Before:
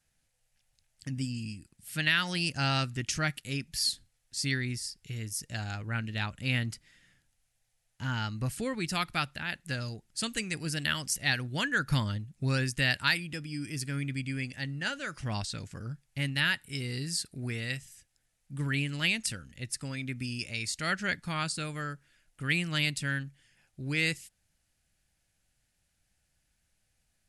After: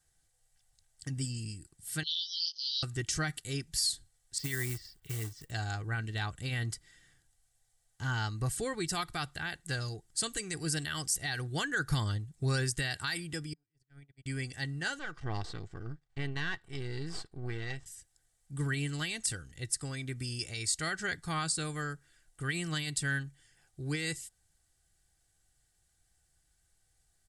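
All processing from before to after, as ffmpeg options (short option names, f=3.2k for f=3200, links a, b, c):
-filter_complex "[0:a]asettb=1/sr,asplit=3[a][b][c];[a]atrim=end=2.034[d];[b]atrim=start=2.03:end=2.83,asetpts=PTS-STARTPTS,afade=t=in:d=0.004:c=qsin,afade=t=out:st=0.796:d=0.004:c=qsin,asuperpass=centerf=4300:order=20:qfactor=1.5,asplit=2[e][f];[f]adelay=18,volume=-3dB[g];[e][g]amix=inputs=2:normalize=0,atrim=end_sample=35280[h];[c]atrim=start=2.826[i];[d][h]acrossfade=d=0.004:c1=hsin:c2=qsin[j];[j][i]acrossfade=d=0.004:c1=qsin:c2=hsin,asettb=1/sr,asplit=3[k][l][m];[k]atrim=end=4.384[n];[l]atrim=start=4.38:end=5.51,asetpts=PTS-STARTPTS,afade=t=in:d=0.004:c=qsin,afade=t=out:st=1.126:d=0.004:c=qsin,lowpass=f=3k:w=0.5412,lowpass=f=3k:w=1.3066,acrusher=bits=4:mode=log:mix=0:aa=0.000001,aemphasis=mode=production:type=50kf[o];[m]atrim=start=5.506[p];[n][o]acrossfade=d=0.004:c1=hsin:c2=qsin[q];[q][p]acrossfade=d=0.004:c1=qsin:c2=hsin,asettb=1/sr,asplit=3[r][s][t];[r]atrim=end=13.534[u];[s]atrim=start=13.53:end=14.26,asetpts=PTS-STARTPTS,afade=t=in:d=0.004:c=qsin,afade=t=out:st=0.726:d=0.004:c=qsin,agate=range=-40dB:threshold=-31dB:ratio=16:release=100:detection=peak,lowpass=f=1.1k:p=1,equalizer=f=410:w=0.4:g=-12.5[v];[t]atrim=start=14.256[w];[u][v]acrossfade=d=0.004:c1=hsin:c2=qsin[x];[x][w]acrossfade=d=0.004:c1=qsin:c2=hsin,asettb=1/sr,asplit=3[y][z][aa];[y]atrim=end=14.994[ab];[z]atrim=start=14.99:end=17.86,asetpts=PTS-STARTPTS,afade=t=in:d=0.004:c=qsin,afade=t=out:st=2.866:d=0.004:c=qsin,aeval=exprs='if(lt(val(0),0),0.251*val(0),val(0))':c=same,lowpass=3.3k[ac];[aa]atrim=start=17.856[ad];[ab][ac]acrossfade=d=0.004:c1=hsin:c2=qsin[ae];[ae][ad]acrossfade=d=0.004:c1=qsin:c2=hsin,aecho=1:1:2.6:0.51,alimiter=limit=-21.5dB:level=0:latency=1:release=63,equalizer=f=160:t=o:w=0.33:g=4,equalizer=f=250:t=o:w=0.33:g=-6,equalizer=f=2.5k:t=o:w=0.33:g=-10,equalizer=f=8k:t=o:w=0.33:g=7"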